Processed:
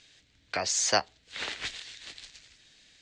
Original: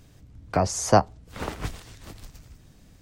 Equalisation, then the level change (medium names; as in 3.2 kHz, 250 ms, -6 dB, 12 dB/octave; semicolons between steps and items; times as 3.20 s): steep low-pass 7.6 kHz 36 dB/octave; tone controls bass -13 dB, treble +14 dB; high-order bell 2.6 kHz +13.5 dB; -9.0 dB